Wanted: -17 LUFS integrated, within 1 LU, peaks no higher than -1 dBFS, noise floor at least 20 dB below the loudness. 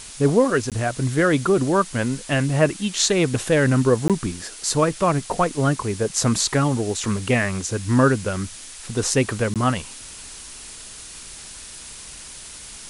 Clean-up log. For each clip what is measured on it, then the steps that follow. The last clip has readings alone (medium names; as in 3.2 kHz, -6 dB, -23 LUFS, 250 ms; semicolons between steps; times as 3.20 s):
dropouts 3; longest dropout 17 ms; noise floor -39 dBFS; noise floor target -41 dBFS; loudness -21.0 LUFS; peak level -2.5 dBFS; loudness target -17.0 LUFS
-> interpolate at 0.70/4.08/9.54 s, 17 ms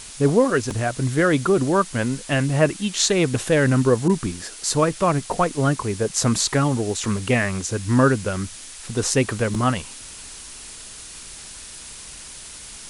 dropouts 0; noise floor -39 dBFS; noise floor target -41 dBFS
-> noise reduction 6 dB, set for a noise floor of -39 dBFS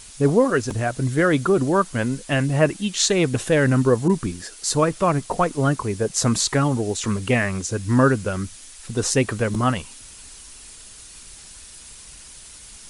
noise floor -43 dBFS; loudness -21.0 LUFS; peak level -2.5 dBFS; loudness target -17.0 LUFS
-> trim +4 dB; peak limiter -1 dBFS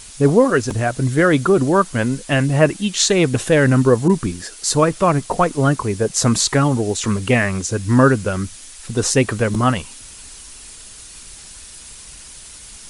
loudness -17.0 LUFS; peak level -1.0 dBFS; noise floor -39 dBFS